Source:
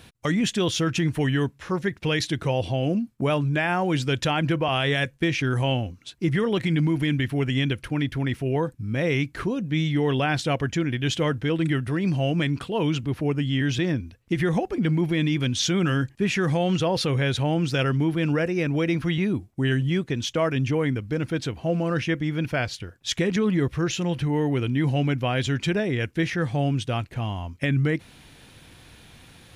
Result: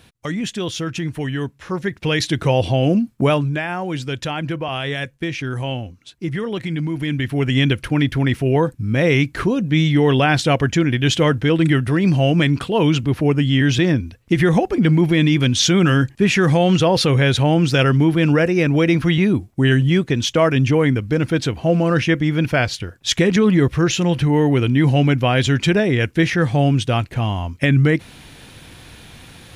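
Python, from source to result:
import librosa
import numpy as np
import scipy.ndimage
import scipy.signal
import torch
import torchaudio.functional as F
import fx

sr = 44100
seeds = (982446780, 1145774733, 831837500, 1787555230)

y = fx.gain(x, sr, db=fx.line((1.32, -1.0), (2.53, 8.0), (3.26, 8.0), (3.67, -1.0), (6.89, -1.0), (7.64, 8.0)))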